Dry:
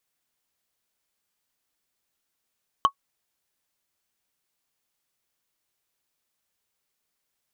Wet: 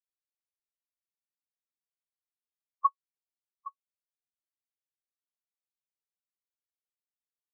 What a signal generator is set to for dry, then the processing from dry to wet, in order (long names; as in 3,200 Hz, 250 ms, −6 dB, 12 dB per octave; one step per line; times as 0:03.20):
struck wood, lowest mode 1,110 Hz, decay 0.08 s, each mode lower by 10 dB, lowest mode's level −9 dB
spectral peaks only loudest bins 4
on a send: single-tap delay 815 ms −11 dB
on the sum: expander for the loud parts 1.5 to 1, over −44 dBFS